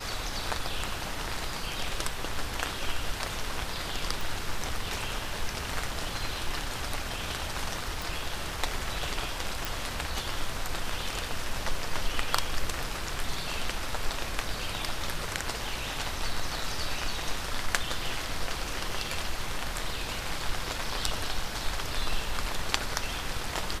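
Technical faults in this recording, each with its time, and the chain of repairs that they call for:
4.21 s: pop
8.02 s: pop
9.65 s: pop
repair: de-click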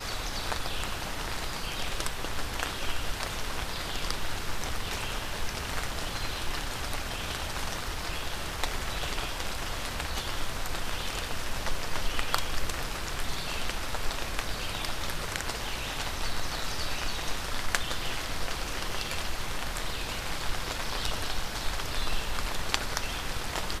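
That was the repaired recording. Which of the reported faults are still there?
nothing left

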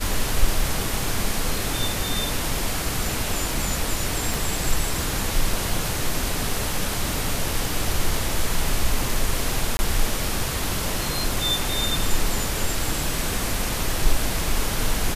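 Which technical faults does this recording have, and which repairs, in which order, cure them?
4.34 s: pop
9.77–9.79 s: dropout 20 ms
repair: de-click; interpolate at 9.77 s, 20 ms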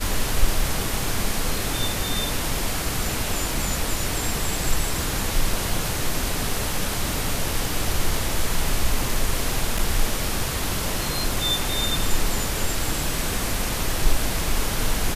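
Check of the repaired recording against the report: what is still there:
nothing left

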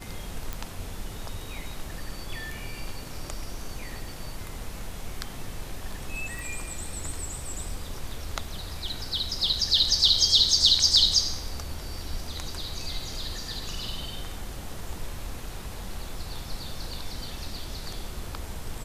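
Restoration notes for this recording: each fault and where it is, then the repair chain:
0.53 s: pop
6.39 s: pop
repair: de-click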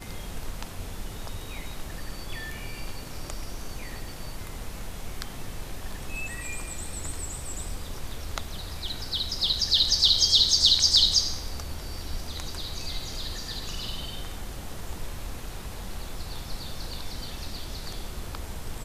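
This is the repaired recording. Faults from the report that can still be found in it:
nothing left

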